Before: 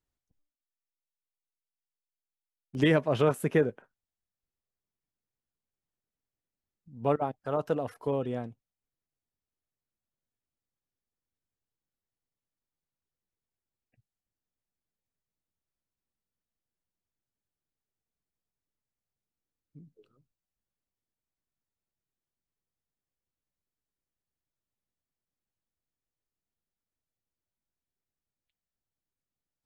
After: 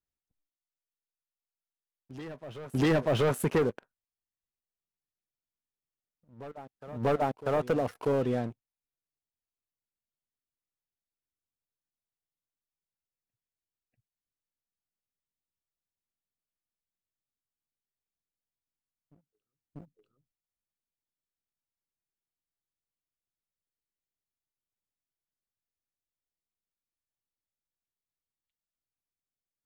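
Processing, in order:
leveller curve on the samples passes 3
downward compressor 1.5 to 1, threshold −29 dBFS, peak gain reduction 5 dB
backwards echo 642 ms −17 dB
level −2.5 dB

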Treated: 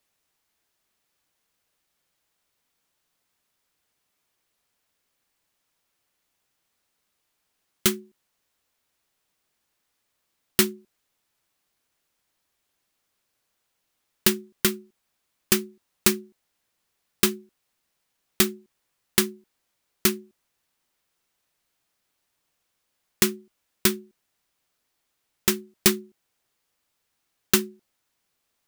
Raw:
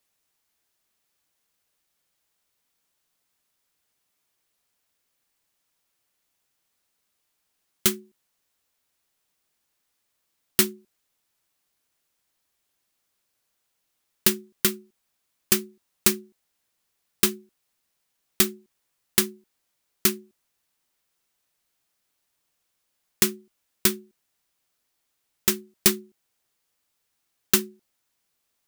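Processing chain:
high-shelf EQ 4,800 Hz −4.5 dB
level +2.5 dB

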